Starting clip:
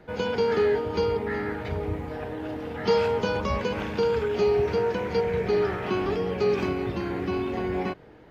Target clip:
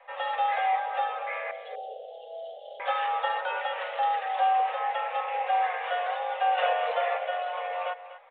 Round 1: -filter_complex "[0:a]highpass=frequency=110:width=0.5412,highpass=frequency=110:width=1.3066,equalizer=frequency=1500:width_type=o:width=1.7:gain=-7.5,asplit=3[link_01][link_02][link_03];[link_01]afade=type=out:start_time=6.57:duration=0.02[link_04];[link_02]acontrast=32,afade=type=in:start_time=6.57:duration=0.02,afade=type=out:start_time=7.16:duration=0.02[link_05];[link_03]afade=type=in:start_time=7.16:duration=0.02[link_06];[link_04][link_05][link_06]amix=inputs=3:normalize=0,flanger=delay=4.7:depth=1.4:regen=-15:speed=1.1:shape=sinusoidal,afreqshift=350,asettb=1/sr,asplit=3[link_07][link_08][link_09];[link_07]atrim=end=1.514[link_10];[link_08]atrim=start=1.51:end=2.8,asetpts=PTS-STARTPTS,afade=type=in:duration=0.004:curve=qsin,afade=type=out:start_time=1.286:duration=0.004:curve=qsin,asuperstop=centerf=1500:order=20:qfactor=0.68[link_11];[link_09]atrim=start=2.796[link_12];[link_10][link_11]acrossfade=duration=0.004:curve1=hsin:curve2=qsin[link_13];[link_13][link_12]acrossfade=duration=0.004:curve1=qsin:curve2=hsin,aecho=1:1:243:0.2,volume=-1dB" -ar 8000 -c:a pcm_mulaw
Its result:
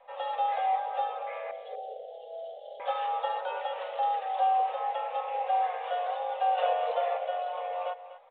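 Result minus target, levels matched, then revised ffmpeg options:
2,000 Hz band −8.0 dB
-filter_complex "[0:a]highpass=frequency=110:width=0.5412,highpass=frequency=110:width=1.3066,equalizer=frequency=1500:width_type=o:width=1.7:gain=4,asplit=3[link_01][link_02][link_03];[link_01]afade=type=out:start_time=6.57:duration=0.02[link_04];[link_02]acontrast=32,afade=type=in:start_time=6.57:duration=0.02,afade=type=out:start_time=7.16:duration=0.02[link_05];[link_03]afade=type=in:start_time=7.16:duration=0.02[link_06];[link_04][link_05][link_06]amix=inputs=3:normalize=0,flanger=delay=4.7:depth=1.4:regen=-15:speed=1.1:shape=sinusoidal,afreqshift=350,asettb=1/sr,asplit=3[link_07][link_08][link_09];[link_07]atrim=end=1.514[link_10];[link_08]atrim=start=1.51:end=2.8,asetpts=PTS-STARTPTS,afade=type=in:duration=0.004:curve=qsin,afade=type=out:start_time=1.286:duration=0.004:curve=qsin,asuperstop=centerf=1500:order=20:qfactor=0.68[link_11];[link_09]atrim=start=2.796[link_12];[link_10][link_11]acrossfade=duration=0.004:curve1=hsin:curve2=qsin[link_13];[link_13][link_12]acrossfade=duration=0.004:curve1=qsin:curve2=hsin,aecho=1:1:243:0.2,volume=-1dB" -ar 8000 -c:a pcm_mulaw

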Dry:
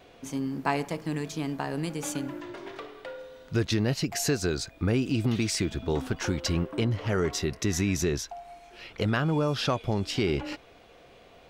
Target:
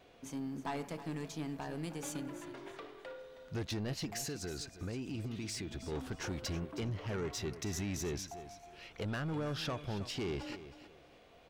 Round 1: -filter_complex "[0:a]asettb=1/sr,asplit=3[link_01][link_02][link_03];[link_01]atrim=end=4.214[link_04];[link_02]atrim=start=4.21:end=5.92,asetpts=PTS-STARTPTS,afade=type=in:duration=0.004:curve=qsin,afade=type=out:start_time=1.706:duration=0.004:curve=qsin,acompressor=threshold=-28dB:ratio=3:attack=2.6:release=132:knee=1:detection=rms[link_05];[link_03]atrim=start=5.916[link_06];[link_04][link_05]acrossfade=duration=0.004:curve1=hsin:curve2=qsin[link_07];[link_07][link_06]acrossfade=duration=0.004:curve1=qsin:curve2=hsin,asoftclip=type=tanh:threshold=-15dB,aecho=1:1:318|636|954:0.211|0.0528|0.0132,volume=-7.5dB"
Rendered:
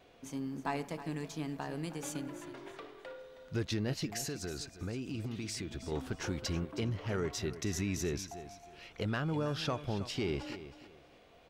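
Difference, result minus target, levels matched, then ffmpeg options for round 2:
soft clipping: distortion −13 dB
-filter_complex "[0:a]asettb=1/sr,asplit=3[link_01][link_02][link_03];[link_01]atrim=end=4.214[link_04];[link_02]atrim=start=4.21:end=5.92,asetpts=PTS-STARTPTS,afade=type=in:duration=0.004:curve=qsin,afade=type=out:start_time=1.706:duration=0.004:curve=qsin,acompressor=threshold=-28dB:ratio=3:attack=2.6:release=132:knee=1:detection=rms[link_05];[link_03]atrim=start=5.916[link_06];[link_04][link_05]acrossfade=duration=0.004:curve1=hsin:curve2=qsin[link_07];[link_07][link_06]acrossfade=duration=0.004:curve1=qsin:curve2=hsin,asoftclip=type=tanh:threshold=-25dB,aecho=1:1:318|636|954:0.211|0.0528|0.0132,volume=-7.5dB"

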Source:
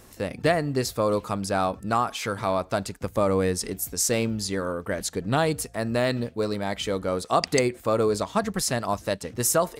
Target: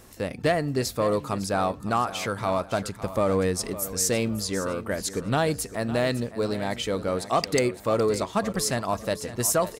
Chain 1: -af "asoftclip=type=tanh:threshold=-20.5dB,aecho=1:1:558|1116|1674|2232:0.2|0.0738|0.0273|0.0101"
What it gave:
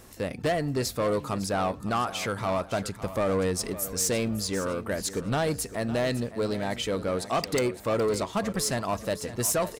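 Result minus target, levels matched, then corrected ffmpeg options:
soft clipping: distortion +11 dB
-af "asoftclip=type=tanh:threshold=-12dB,aecho=1:1:558|1116|1674|2232:0.2|0.0738|0.0273|0.0101"

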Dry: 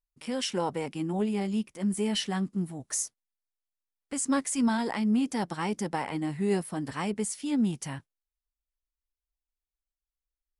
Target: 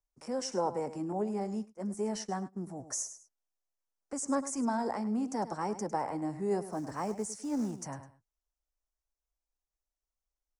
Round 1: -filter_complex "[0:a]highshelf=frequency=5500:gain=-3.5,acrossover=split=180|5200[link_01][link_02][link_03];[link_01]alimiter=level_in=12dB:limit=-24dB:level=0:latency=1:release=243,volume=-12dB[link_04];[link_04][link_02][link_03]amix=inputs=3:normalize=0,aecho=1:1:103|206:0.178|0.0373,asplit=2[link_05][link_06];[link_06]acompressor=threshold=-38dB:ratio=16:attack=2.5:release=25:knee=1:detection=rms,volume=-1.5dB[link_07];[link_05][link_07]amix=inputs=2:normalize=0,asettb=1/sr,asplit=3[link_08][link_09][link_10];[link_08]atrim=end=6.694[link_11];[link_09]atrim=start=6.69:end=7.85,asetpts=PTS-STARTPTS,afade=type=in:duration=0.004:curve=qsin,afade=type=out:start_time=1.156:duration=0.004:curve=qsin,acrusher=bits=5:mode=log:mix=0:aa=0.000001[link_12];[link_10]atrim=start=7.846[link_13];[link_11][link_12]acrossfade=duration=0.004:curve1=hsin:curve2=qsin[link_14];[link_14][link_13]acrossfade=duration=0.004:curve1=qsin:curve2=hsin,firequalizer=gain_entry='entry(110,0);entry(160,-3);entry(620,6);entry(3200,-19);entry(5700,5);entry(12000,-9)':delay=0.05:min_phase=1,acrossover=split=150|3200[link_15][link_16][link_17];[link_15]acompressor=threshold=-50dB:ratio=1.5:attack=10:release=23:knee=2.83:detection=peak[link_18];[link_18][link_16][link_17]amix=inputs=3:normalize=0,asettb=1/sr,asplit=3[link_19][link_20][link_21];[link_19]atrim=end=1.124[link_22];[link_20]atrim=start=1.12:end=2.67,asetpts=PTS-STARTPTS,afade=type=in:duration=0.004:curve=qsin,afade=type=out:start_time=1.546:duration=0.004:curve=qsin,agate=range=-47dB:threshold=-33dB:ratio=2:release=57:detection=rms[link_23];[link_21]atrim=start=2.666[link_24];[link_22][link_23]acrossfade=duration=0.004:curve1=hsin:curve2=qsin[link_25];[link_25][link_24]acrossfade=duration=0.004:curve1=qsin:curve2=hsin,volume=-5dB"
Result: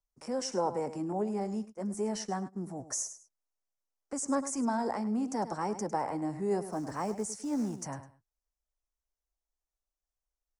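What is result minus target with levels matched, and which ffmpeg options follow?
downward compressor: peak gain reduction −7.5 dB
-filter_complex "[0:a]highshelf=frequency=5500:gain=-3.5,acrossover=split=180|5200[link_01][link_02][link_03];[link_01]alimiter=level_in=12dB:limit=-24dB:level=0:latency=1:release=243,volume=-12dB[link_04];[link_04][link_02][link_03]amix=inputs=3:normalize=0,aecho=1:1:103|206:0.178|0.0373,asplit=2[link_05][link_06];[link_06]acompressor=threshold=-46dB:ratio=16:attack=2.5:release=25:knee=1:detection=rms,volume=-1.5dB[link_07];[link_05][link_07]amix=inputs=2:normalize=0,asettb=1/sr,asplit=3[link_08][link_09][link_10];[link_08]atrim=end=6.694[link_11];[link_09]atrim=start=6.69:end=7.85,asetpts=PTS-STARTPTS,afade=type=in:duration=0.004:curve=qsin,afade=type=out:start_time=1.156:duration=0.004:curve=qsin,acrusher=bits=5:mode=log:mix=0:aa=0.000001[link_12];[link_10]atrim=start=7.846[link_13];[link_11][link_12]acrossfade=duration=0.004:curve1=hsin:curve2=qsin[link_14];[link_14][link_13]acrossfade=duration=0.004:curve1=qsin:curve2=hsin,firequalizer=gain_entry='entry(110,0);entry(160,-3);entry(620,6);entry(3200,-19);entry(5700,5);entry(12000,-9)':delay=0.05:min_phase=1,acrossover=split=150|3200[link_15][link_16][link_17];[link_15]acompressor=threshold=-50dB:ratio=1.5:attack=10:release=23:knee=2.83:detection=peak[link_18];[link_18][link_16][link_17]amix=inputs=3:normalize=0,asettb=1/sr,asplit=3[link_19][link_20][link_21];[link_19]atrim=end=1.124[link_22];[link_20]atrim=start=1.12:end=2.67,asetpts=PTS-STARTPTS,afade=type=in:duration=0.004:curve=qsin,afade=type=out:start_time=1.546:duration=0.004:curve=qsin,agate=range=-47dB:threshold=-33dB:ratio=2:release=57:detection=rms[link_23];[link_21]atrim=start=2.666[link_24];[link_22][link_23]acrossfade=duration=0.004:curve1=hsin:curve2=qsin[link_25];[link_25][link_24]acrossfade=duration=0.004:curve1=qsin:curve2=hsin,volume=-5dB"

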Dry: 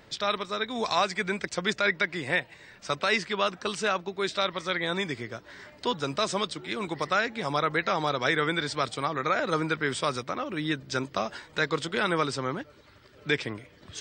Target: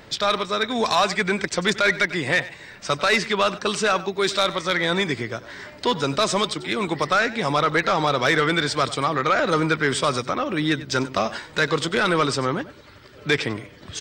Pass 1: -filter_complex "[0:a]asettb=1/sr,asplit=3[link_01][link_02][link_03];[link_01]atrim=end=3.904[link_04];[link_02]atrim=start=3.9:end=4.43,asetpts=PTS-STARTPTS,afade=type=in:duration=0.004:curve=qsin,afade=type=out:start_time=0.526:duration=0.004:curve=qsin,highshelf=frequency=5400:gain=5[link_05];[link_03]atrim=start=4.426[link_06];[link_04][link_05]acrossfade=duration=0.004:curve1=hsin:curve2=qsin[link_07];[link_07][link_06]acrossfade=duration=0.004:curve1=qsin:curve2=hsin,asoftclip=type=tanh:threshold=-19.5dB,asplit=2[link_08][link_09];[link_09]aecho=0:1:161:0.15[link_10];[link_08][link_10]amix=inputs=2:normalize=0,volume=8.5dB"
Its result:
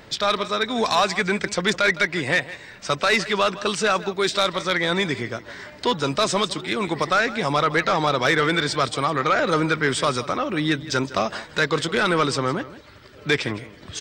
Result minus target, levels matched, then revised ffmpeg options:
echo 66 ms late
-filter_complex "[0:a]asettb=1/sr,asplit=3[link_01][link_02][link_03];[link_01]atrim=end=3.904[link_04];[link_02]atrim=start=3.9:end=4.43,asetpts=PTS-STARTPTS,afade=type=in:duration=0.004:curve=qsin,afade=type=out:start_time=0.526:duration=0.004:curve=qsin,highshelf=frequency=5400:gain=5[link_05];[link_03]atrim=start=4.426[link_06];[link_04][link_05]acrossfade=duration=0.004:curve1=hsin:curve2=qsin[link_07];[link_07][link_06]acrossfade=duration=0.004:curve1=qsin:curve2=hsin,asoftclip=type=tanh:threshold=-19.5dB,asplit=2[link_08][link_09];[link_09]aecho=0:1:95:0.15[link_10];[link_08][link_10]amix=inputs=2:normalize=0,volume=8.5dB"

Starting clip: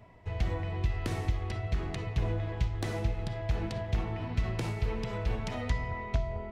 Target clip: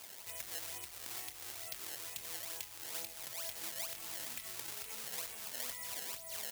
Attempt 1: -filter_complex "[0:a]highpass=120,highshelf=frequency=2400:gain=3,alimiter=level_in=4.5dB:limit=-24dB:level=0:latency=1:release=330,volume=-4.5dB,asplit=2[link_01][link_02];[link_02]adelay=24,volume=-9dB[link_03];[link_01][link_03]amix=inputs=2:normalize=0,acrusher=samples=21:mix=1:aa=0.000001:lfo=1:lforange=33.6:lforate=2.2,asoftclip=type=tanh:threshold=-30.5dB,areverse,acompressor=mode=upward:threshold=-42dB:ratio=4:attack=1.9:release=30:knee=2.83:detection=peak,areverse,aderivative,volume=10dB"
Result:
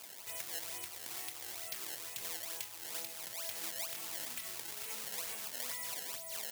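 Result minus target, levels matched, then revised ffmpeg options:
125 Hz band −3.0 dB
-filter_complex "[0:a]highpass=37,highshelf=frequency=2400:gain=3,alimiter=level_in=4.5dB:limit=-24dB:level=0:latency=1:release=330,volume=-4.5dB,asplit=2[link_01][link_02];[link_02]adelay=24,volume=-9dB[link_03];[link_01][link_03]amix=inputs=2:normalize=0,acrusher=samples=21:mix=1:aa=0.000001:lfo=1:lforange=33.6:lforate=2.2,asoftclip=type=tanh:threshold=-30.5dB,areverse,acompressor=mode=upward:threshold=-42dB:ratio=4:attack=1.9:release=30:knee=2.83:detection=peak,areverse,aderivative,volume=10dB"

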